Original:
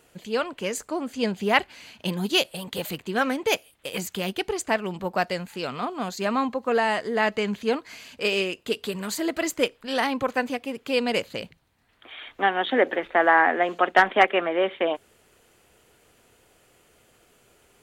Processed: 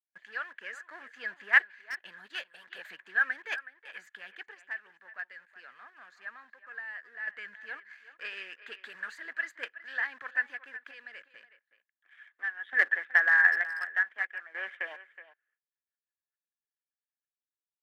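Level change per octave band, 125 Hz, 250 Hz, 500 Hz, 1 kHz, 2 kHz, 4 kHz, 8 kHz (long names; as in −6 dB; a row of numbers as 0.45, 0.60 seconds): below −35 dB, below −30 dB, −27.0 dB, −19.5 dB, −0.5 dB, −17.5 dB, below −20 dB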